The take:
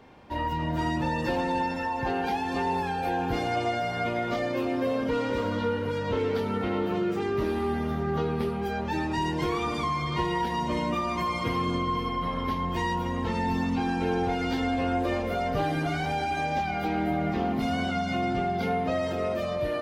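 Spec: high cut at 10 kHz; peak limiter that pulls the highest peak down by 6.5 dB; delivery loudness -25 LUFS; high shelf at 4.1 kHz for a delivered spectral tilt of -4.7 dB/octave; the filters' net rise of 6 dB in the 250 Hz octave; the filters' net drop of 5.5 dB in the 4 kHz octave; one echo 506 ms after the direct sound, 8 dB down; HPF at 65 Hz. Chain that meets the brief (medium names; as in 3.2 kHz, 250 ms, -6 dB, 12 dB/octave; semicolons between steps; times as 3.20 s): high-pass 65 Hz; low-pass 10 kHz; peaking EQ 250 Hz +7.5 dB; peaking EQ 4 kHz -4.5 dB; treble shelf 4.1 kHz -6 dB; peak limiter -18.5 dBFS; delay 506 ms -8 dB; trim +1.5 dB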